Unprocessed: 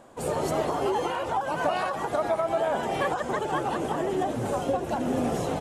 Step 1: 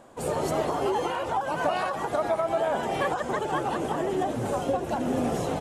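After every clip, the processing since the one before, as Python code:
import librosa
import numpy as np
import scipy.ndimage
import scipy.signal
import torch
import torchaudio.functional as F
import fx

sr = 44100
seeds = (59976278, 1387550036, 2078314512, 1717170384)

y = x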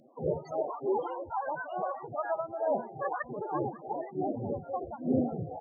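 y = fx.harmonic_tremolo(x, sr, hz=3.3, depth_pct=70, crossover_hz=920.0)
y = fx.spec_topn(y, sr, count=16)
y = fx.phaser_stages(y, sr, stages=2, low_hz=140.0, high_hz=4900.0, hz=1.2, feedback_pct=45)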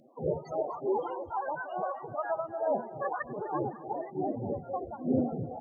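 y = fx.echo_feedback(x, sr, ms=254, feedback_pct=42, wet_db=-18)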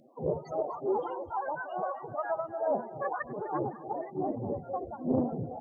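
y = fx.doppler_dist(x, sr, depth_ms=0.39)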